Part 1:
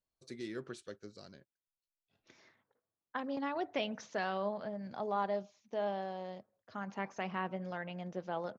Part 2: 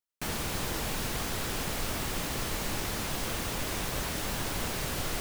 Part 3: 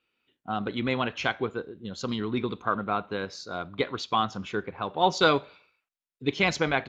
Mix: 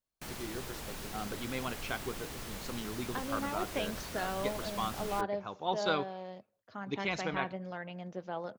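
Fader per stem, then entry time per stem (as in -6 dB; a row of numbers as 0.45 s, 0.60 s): -0.5 dB, -10.0 dB, -10.5 dB; 0.00 s, 0.00 s, 0.65 s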